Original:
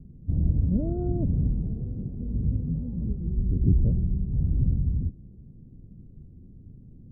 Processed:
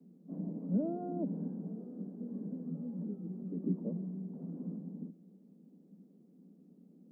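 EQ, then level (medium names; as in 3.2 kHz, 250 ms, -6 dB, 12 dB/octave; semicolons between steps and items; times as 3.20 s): steep high-pass 170 Hz 96 dB/octave; bass shelf 340 Hz -9.5 dB; band-stop 360 Hz, Q 12; +2.0 dB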